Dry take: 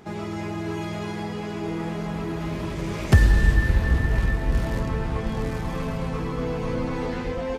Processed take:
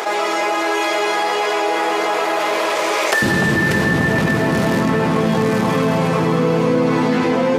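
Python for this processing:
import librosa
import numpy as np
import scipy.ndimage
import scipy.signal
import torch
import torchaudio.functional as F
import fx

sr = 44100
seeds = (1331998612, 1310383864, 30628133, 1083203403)

y = fx.highpass(x, sr, hz=fx.steps((0.0, 490.0), (3.22, 150.0)), slope=24)
y = fx.echo_alternate(y, sr, ms=294, hz=1300.0, feedback_pct=63, wet_db=-5.0)
y = fx.env_flatten(y, sr, amount_pct=70)
y = y * 10.0 ** (9.0 / 20.0)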